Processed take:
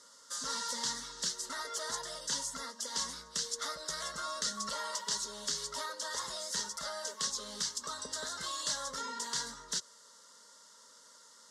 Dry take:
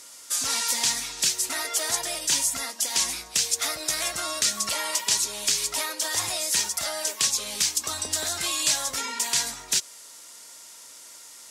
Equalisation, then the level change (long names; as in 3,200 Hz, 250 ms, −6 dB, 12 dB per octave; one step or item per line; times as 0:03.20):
low-pass filter 4,900 Hz 12 dB per octave
phaser with its sweep stopped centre 490 Hz, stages 8
−4.0 dB